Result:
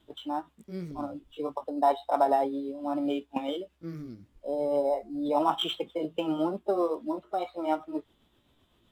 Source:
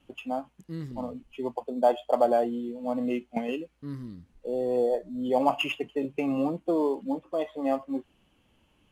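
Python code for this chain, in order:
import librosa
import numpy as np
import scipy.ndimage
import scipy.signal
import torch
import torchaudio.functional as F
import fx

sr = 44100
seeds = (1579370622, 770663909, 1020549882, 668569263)

y = fx.pitch_heads(x, sr, semitones=2.5)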